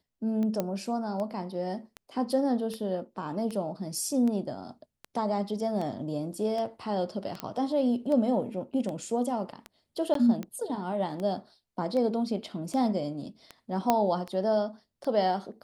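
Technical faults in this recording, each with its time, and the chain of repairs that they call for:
tick 78 rpm -23 dBFS
0.6 pop -15 dBFS
7.4 pop -17 dBFS
10.14–10.15 gap 13 ms
13.9 pop -9 dBFS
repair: de-click; interpolate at 10.14, 13 ms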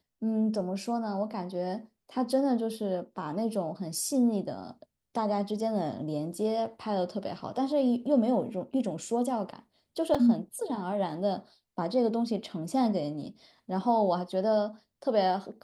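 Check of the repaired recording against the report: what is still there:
7.4 pop

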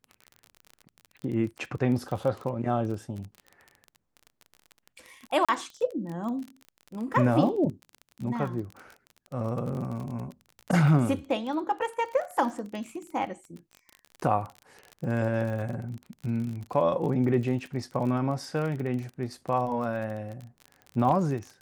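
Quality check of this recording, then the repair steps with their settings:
crackle 34/s -34 dBFS
5.45–5.49 gap 36 ms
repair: de-click; interpolate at 5.45, 36 ms

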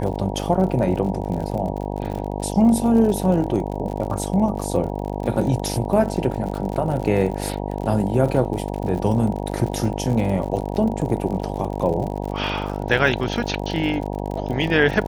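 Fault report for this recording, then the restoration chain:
buzz 50 Hz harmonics 19 -27 dBFS
crackle 51/s -28 dBFS
2.13–2.14 gap 6.2 ms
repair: de-click; de-hum 50 Hz, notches 19; interpolate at 2.13, 6.2 ms

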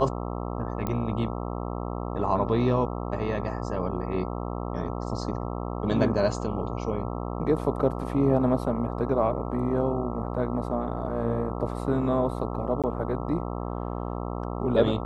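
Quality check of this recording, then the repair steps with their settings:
buzz 60 Hz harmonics 22 -32 dBFS
0.87 pop -16 dBFS
12.82–12.84 gap 17 ms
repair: de-click; de-hum 60 Hz, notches 22; interpolate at 12.82, 17 ms

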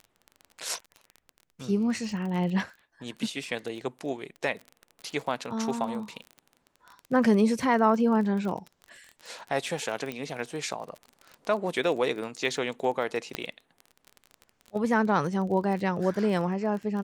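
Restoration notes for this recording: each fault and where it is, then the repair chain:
crackle 27/s -34 dBFS
10.12 pop -20 dBFS
13.35 pop -14 dBFS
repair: de-click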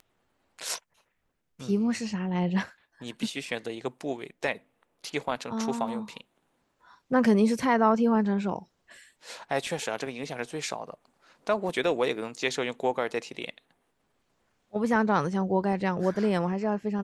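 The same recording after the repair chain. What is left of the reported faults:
none

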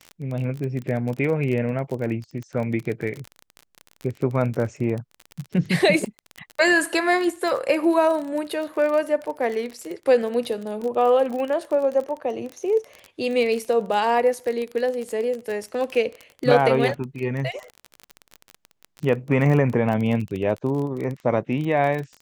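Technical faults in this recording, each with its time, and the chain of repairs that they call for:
crackle 30/s -27 dBFS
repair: de-click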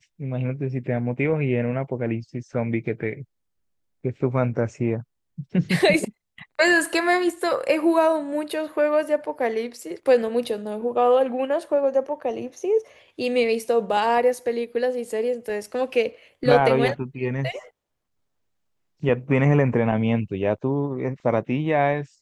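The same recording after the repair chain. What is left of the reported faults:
none

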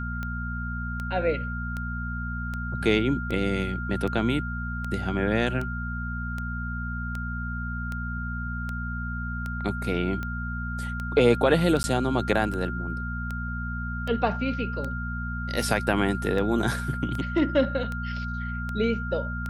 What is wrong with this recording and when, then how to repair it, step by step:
hum 60 Hz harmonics 4 -32 dBFS
tick 78 rpm -20 dBFS
tone 1400 Hz -34 dBFS
11.83–11.84 gap 10 ms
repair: de-click; notch 1400 Hz, Q 30; de-hum 60 Hz, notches 4; interpolate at 11.83, 10 ms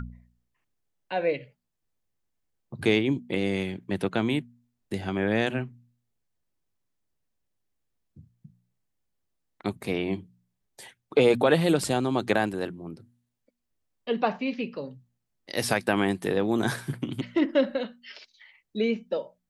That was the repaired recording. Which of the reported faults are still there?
none

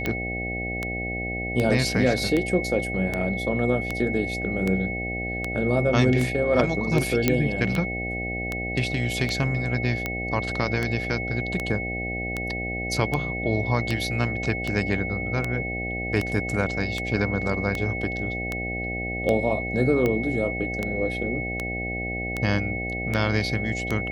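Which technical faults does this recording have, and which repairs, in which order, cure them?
buzz 60 Hz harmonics 13 -32 dBFS
tick 78 rpm -12 dBFS
tone 2200 Hz -30 dBFS
7.28 pop -5 dBFS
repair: de-click; de-hum 60 Hz, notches 13; notch 2200 Hz, Q 30

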